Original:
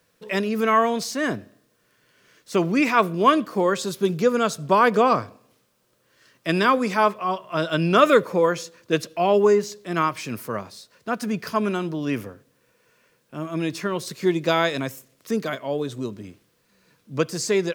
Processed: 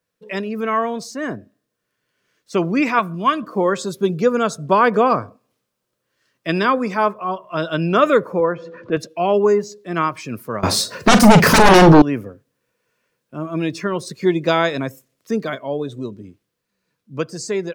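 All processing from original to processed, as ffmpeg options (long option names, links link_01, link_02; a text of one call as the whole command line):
ffmpeg -i in.wav -filter_complex "[0:a]asettb=1/sr,asplit=3[link_01][link_02][link_03];[link_01]atrim=end=2.994[link_04];[link_02]atrim=start=2.99:end=3.43,asetpts=PTS-STARTPTS,afade=type=in:duration=0.004:curve=qsin,afade=type=out:start_time=0.436:duration=0.004:curve=qsin,equalizer=frequency=440:width_type=o:width=1:gain=-15,acompressor=mode=upward:threshold=-27dB:ratio=2.5:attack=3.2:release=140:knee=2.83:detection=peak[link_05];[link_03]atrim=start=3.426[link_06];[link_04][link_05]acrossfade=duration=0.004:curve1=hsin:curve2=qsin[link_07];[link_07][link_06]acrossfade=duration=0.004:curve1=qsin:curve2=hsin,asettb=1/sr,asplit=3[link_08][link_09][link_10];[link_08]atrim=end=8.404[link_11];[link_09]atrim=start=8.4:end=8.97,asetpts=PTS-STARTPTS,afade=type=in:duration=0.004:curve=qsin,afade=type=out:start_time=0.566:duration=0.004:curve=qsin,highpass=110,lowpass=2100,acompressor=mode=upward:threshold=-24dB:ratio=2.5:attack=3.2:release=140:knee=2.83:detection=peak[link_12];[link_10]atrim=start=8.966[link_13];[link_11][link_12]acrossfade=duration=0.004:curve1=hsin:curve2=qsin[link_14];[link_14][link_13]acrossfade=duration=0.004:curve1=qsin:curve2=hsin,asettb=1/sr,asplit=3[link_15][link_16][link_17];[link_15]atrim=end=10.634[link_18];[link_16]atrim=start=10.63:end=12.02,asetpts=PTS-STARTPTS,afade=type=in:duration=0.004:curve=qsin,afade=type=out:start_time=1.386:duration=0.004:curve=qsin,aeval=exprs='0.398*sin(PI/2*8.91*val(0)/0.398)':channel_layout=same,deesser=0.3,asplit=2[link_19][link_20];[link_20]adelay=43,volume=-10.5dB[link_21];[link_19][link_21]amix=inputs=2:normalize=0,atrim=end_sample=61299[link_22];[link_17]atrim=start=12.016[link_23];[link_18][link_22]acrossfade=duration=0.004:curve1=hsin:curve2=qsin[link_24];[link_24][link_23]acrossfade=duration=0.004:curve1=qsin:curve2=hsin,afftdn=noise_reduction=12:noise_floor=-40,adynamicequalizer=threshold=0.01:dfrequency=3500:dqfactor=0.81:tfrequency=3500:tqfactor=0.81:attack=5:release=100:ratio=0.375:range=3.5:mode=cutabove:tftype=bell,dynaudnorm=framelen=210:gausssize=21:maxgain=11.5dB,volume=-1dB" out.wav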